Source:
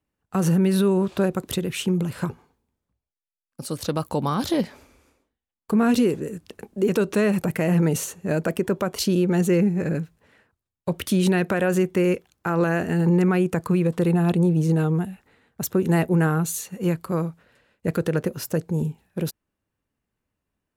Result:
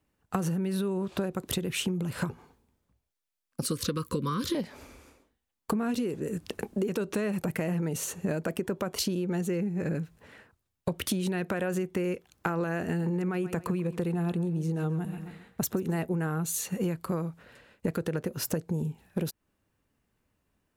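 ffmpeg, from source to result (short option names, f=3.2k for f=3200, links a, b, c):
-filter_complex "[0:a]asettb=1/sr,asplit=3[a][b][c];[a]atrim=end=3.624[d];[b]atrim=start=3.62:end=4.55,asetpts=PTS-STARTPTS,afade=t=in:d=0.004:c=qsin,afade=t=out:st=0.926:d=0.004:c=qsin,asuperstop=centerf=730:order=20:qfactor=1.7[e];[c]atrim=start=4.546[f];[d][e]acrossfade=d=0.004:c1=hsin:c2=qsin[g];[g][f]acrossfade=d=0.004:c1=qsin:c2=hsin,asettb=1/sr,asplit=3[h][i][j];[h]atrim=end=12.894[k];[i]atrim=start=12.89:end=16.01,asetpts=PTS-STARTPTS,afade=t=in:d=0.004:c=qsin,afade=t=out:st=3.116:d=0.004:c=qsin,aecho=1:1:133|266|399:0.178|0.0587|0.0194,atrim=end_sample=137592[l];[j]atrim=start=16.006[m];[k][l]acrossfade=d=0.004:c1=hsin:c2=qsin[n];[n][m]acrossfade=d=0.004:c1=qsin:c2=hsin,acompressor=threshold=-32dB:ratio=16,volume=5.5dB"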